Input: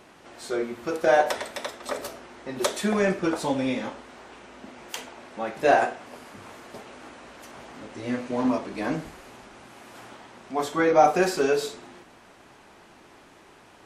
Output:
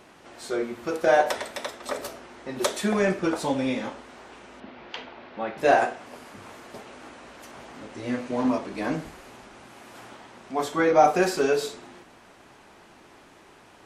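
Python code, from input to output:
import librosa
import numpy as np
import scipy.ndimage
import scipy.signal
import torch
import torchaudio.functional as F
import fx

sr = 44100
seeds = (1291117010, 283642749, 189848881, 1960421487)

y = fx.cheby2_lowpass(x, sr, hz=9600.0, order=4, stop_db=50, at=(4.6, 5.58))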